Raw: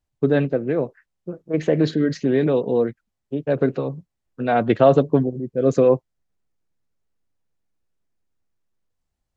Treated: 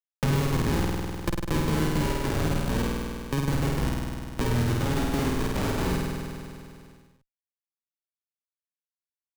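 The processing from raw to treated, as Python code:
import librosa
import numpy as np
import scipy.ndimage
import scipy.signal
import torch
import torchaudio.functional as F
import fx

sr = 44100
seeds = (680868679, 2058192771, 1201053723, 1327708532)

y = fx.bit_reversed(x, sr, seeds[0], block=64)
y = fx.high_shelf(y, sr, hz=2400.0, db=10.0, at=(0.58, 1.29))
y = fx.overflow_wrap(y, sr, gain_db=13.0, at=(2.28, 2.72))
y = fx.ellip_highpass(y, sr, hz=160.0, order=4, stop_db=50, at=(4.93, 5.82))
y = fx.env_lowpass_down(y, sr, base_hz=1000.0, full_db=-15.0)
y = fx.schmitt(y, sr, flips_db=-26.0)
y = fx.rider(y, sr, range_db=10, speed_s=2.0)
y = fx.room_flutter(y, sr, wall_m=8.6, rt60_s=1.3)
y = fx.band_squash(y, sr, depth_pct=70)
y = y * 10.0 ** (1.0 / 20.0)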